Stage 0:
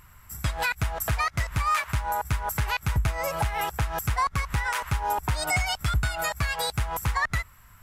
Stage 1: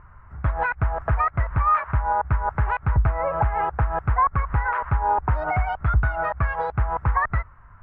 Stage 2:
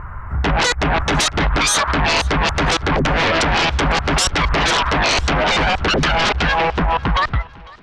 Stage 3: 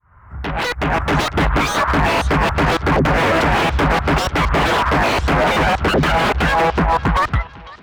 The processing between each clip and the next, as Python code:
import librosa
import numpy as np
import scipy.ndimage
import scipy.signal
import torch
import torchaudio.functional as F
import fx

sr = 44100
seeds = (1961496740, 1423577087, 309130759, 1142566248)

y1 = scipy.signal.sosfilt(scipy.signal.butter(4, 1500.0, 'lowpass', fs=sr, output='sos'), x)
y1 = fx.peak_eq(y1, sr, hz=210.0, db=-5.0, octaves=1.6)
y1 = y1 * 10.0 ** (6.5 / 20.0)
y2 = fx.fade_out_tail(y1, sr, length_s=1.56)
y2 = fx.fold_sine(y2, sr, drive_db=17, ceiling_db=-9.5)
y2 = fx.echo_feedback(y2, sr, ms=501, feedback_pct=44, wet_db=-23)
y2 = y2 * 10.0 ** (-3.5 / 20.0)
y3 = fx.fade_in_head(y2, sr, length_s=1.27)
y3 = scipy.signal.sosfilt(scipy.signal.butter(2, 54.0, 'highpass', fs=sr, output='sos'), y3)
y3 = fx.slew_limit(y3, sr, full_power_hz=190.0)
y3 = y3 * 10.0 ** (3.0 / 20.0)